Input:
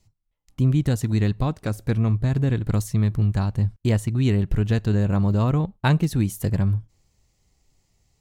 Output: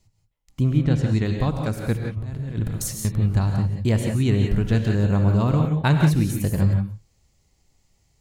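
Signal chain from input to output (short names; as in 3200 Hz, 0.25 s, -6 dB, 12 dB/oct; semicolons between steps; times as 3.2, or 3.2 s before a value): 0.69–1.24 LPF 2700 Hz -> 7000 Hz 12 dB/oct; 1.96–3.05 negative-ratio compressor -27 dBFS, ratio -0.5; non-linear reverb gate 0.2 s rising, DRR 3 dB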